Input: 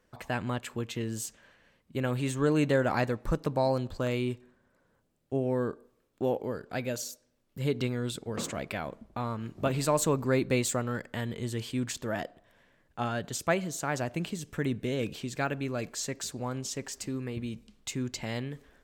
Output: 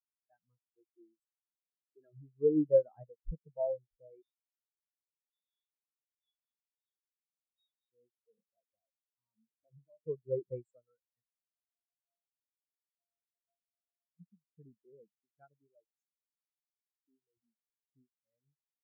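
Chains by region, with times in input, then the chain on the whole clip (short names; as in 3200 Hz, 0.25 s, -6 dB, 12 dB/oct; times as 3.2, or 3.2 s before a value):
0.8–2.17 notches 50/100/150/200/250/300 Hz + comb 3 ms, depth 43%
4.22–7.92 compressor 4:1, threshold -41 dBFS + inverted band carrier 3900 Hz + echo 0.684 s -7 dB
8.74–10.07 Butterworth band-stop 2300 Hz, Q 0.61 + hard clip -30.5 dBFS + three-band squash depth 40%
11.22–14.2 sample sorter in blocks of 64 samples + comb 7.4 ms, depth 73% + compressor 3:1, threshold -45 dBFS
16.04–16.82 small resonant body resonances 1300/3100 Hz, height 11 dB, ringing for 20 ms + core saturation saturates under 2300 Hz
whole clip: spectral noise reduction 8 dB; dynamic EQ 260 Hz, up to -6 dB, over -46 dBFS, Q 6.2; spectral expander 4:1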